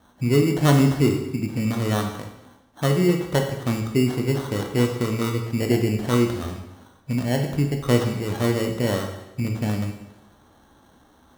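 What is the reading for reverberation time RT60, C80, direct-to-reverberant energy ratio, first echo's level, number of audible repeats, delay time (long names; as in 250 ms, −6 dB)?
0.95 s, 8.5 dB, 3.0 dB, no echo audible, no echo audible, no echo audible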